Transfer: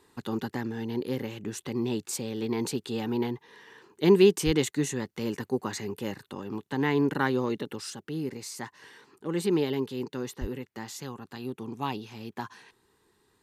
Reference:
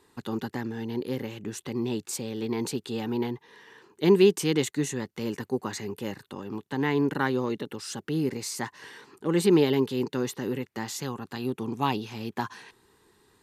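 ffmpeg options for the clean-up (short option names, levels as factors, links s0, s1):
-filter_complex "[0:a]asplit=3[s0][s1][s2];[s0]afade=t=out:st=4.45:d=0.02[s3];[s1]highpass=f=140:w=0.5412,highpass=f=140:w=1.3066,afade=t=in:st=4.45:d=0.02,afade=t=out:st=4.57:d=0.02[s4];[s2]afade=t=in:st=4.57:d=0.02[s5];[s3][s4][s5]amix=inputs=3:normalize=0,asplit=3[s6][s7][s8];[s6]afade=t=out:st=10.4:d=0.02[s9];[s7]highpass=f=140:w=0.5412,highpass=f=140:w=1.3066,afade=t=in:st=10.4:d=0.02,afade=t=out:st=10.52:d=0.02[s10];[s8]afade=t=in:st=10.52:d=0.02[s11];[s9][s10][s11]amix=inputs=3:normalize=0,asetnsamples=n=441:p=0,asendcmd='7.9 volume volume 5.5dB',volume=1"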